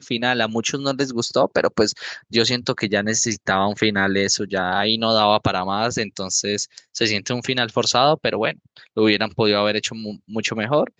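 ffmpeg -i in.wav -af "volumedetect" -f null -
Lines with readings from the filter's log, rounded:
mean_volume: -21.0 dB
max_volume: -1.7 dB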